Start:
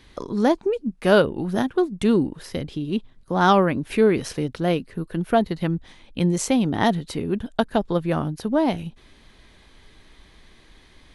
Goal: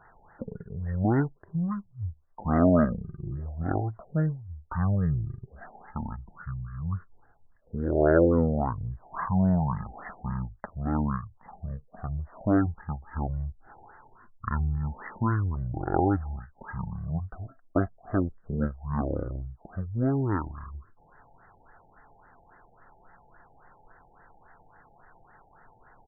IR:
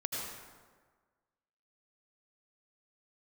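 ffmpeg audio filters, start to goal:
-af "asetrate=18846,aresample=44100,equalizer=frequency=1200:width=0.43:gain=10,afftfilt=real='re*lt(b*sr/1024,870*pow(2100/870,0.5+0.5*sin(2*PI*3.6*pts/sr)))':imag='im*lt(b*sr/1024,870*pow(2100/870,0.5+0.5*sin(2*PI*3.6*pts/sr)))':win_size=1024:overlap=0.75,volume=-8.5dB"

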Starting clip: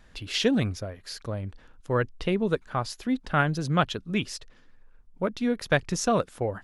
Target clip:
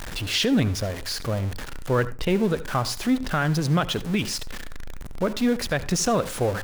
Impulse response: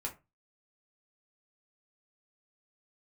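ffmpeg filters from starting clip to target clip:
-filter_complex "[0:a]aeval=exprs='val(0)+0.5*0.0237*sgn(val(0))':channel_layout=same,alimiter=limit=-17dB:level=0:latency=1:release=69,asplit=2[link_01][link_02];[1:a]atrim=start_sample=2205,adelay=71[link_03];[link_02][link_03]afir=irnorm=-1:irlink=0,volume=-16dB[link_04];[link_01][link_04]amix=inputs=2:normalize=0,volume=3.5dB"

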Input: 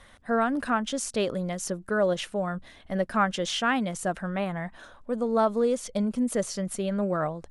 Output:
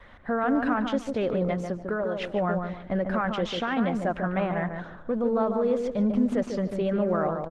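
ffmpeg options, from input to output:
ffmpeg -i in.wav -filter_complex "[0:a]adynamicequalizer=threshold=0.00562:dfrequency=130:dqfactor=1.2:tfrequency=130:tqfactor=1.2:attack=5:release=100:ratio=0.375:range=3:mode=cutabove:tftype=bell,asplit=3[link_01][link_02][link_03];[link_01]afade=type=out:start_time=1.53:duration=0.02[link_04];[link_02]acompressor=threshold=-31dB:ratio=10,afade=type=in:start_time=1.53:duration=0.02,afade=type=out:start_time=2.2:duration=0.02[link_05];[link_03]afade=type=in:start_time=2.2:duration=0.02[link_06];[link_04][link_05][link_06]amix=inputs=3:normalize=0,alimiter=limit=-23dB:level=0:latency=1:release=30,lowpass=2500,asplit=2[link_07][link_08];[link_08]adelay=147,lowpass=frequency=1200:poles=1,volume=-4dB,asplit=2[link_09][link_10];[link_10]adelay=147,lowpass=frequency=1200:poles=1,volume=0.33,asplit=2[link_11][link_12];[link_12]adelay=147,lowpass=frequency=1200:poles=1,volume=0.33,asplit=2[link_13][link_14];[link_14]adelay=147,lowpass=frequency=1200:poles=1,volume=0.33[link_15];[link_07][link_09][link_11][link_13][link_15]amix=inputs=5:normalize=0,volume=5dB" -ar 48000 -c:a libopus -b:a 16k out.opus

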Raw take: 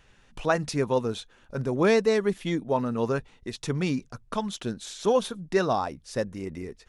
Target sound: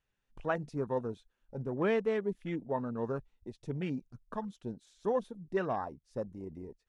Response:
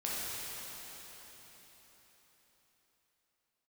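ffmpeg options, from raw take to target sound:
-af "afwtdn=0.0178,volume=-8.5dB"

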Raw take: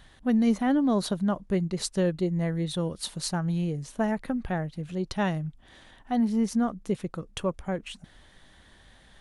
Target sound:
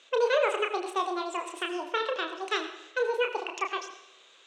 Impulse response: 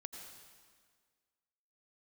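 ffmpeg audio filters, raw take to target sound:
-filter_complex "[0:a]highpass=frequency=210:width=0.5412,highpass=frequency=210:width=1.3066,equalizer=frequency=210:width_type=q:width=4:gain=-3,equalizer=frequency=370:width_type=q:width=4:gain=-5,equalizer=frequency=890:width_type=q:width=4:gain=-3,equalizer=frequency=1300:width_type=q:width=4:gain=10,equalizer=frequency=2300:width_type=q:width=4:gain=-4,lowpass=frequency=2900:width=0.5412,lowpass=frequency=2900:width=1.3066,asplit=2[link_01][link_02];[1:a]atrim=start_sample=2205,adelay=64[link_03];[link_02][link_03]afir=irnorm=-1:irlink=0,volume=-0.5dB[link_04];[link_01][link_04]amix=inputs=2:normalize=0,asetrate=90846,aresample=44100"

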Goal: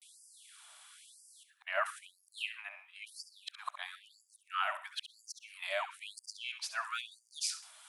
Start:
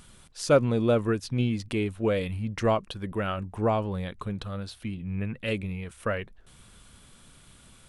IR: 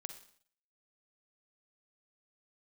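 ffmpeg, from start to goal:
-filter_complex "[0:a]areverse,asplit=2[link_01][link_02];[1:a]atrim=start_sample=2205,atrim=end_sample=6174,adelay=68[link_03];[link_02][link_03]afir=irnorm=-1:irlink=0,volume=-7dB[link_04];[link_01][link_04]amix=inputs=2:normalize=0,afftfilt=real='re*gte(b*sr/1024,570*pow(4700/570,0.5+0.5*sin(2*PI*1*pts/sr)))':imag='im*gte(b*sr/1024,570*pow(4700/570,0.5+0.5*sin(2*PI*1*pts/sr)))':win_size=1024:overlap=0.75"

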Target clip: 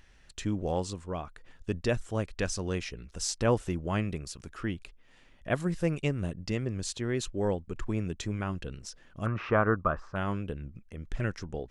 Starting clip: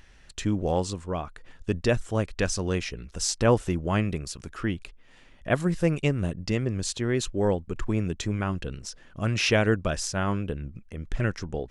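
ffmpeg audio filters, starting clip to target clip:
ffmpeg -i in.wav -filter_complex "[0:a]asettb=1/sr,asplit=3[link_01][link_02][link_03];[link_01]atrim=end=9.264[link_04];[link_02]atrim=start=9.26:end=10.16,asetpts=PTS-STARTPTS,afade=type=in:duration=0.004:curve=qsin,afade=type=out:start_time=0.896:duration=0.004:curve=qsin,lowpass=frequency=1200:width_type=q:width=6.4[link_05];[link_03]atrim=start=10.156[link_06];[link_04][link_05]acrossfade=duration=0.004:curve1=hsin:curve2=qsin[link_07];[link_07][link_06]acrossfade=duration=0.004:curve1=qsin:curve2=hsin,volume=-5dB" out.wav

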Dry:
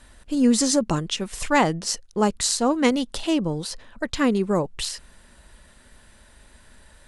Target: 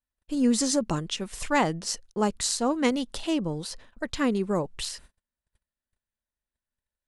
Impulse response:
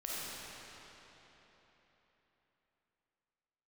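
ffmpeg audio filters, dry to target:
-af "agate=range=-38dB:threshold=-43dB:ratio=16:detection=peak,volume=-4.5dB"

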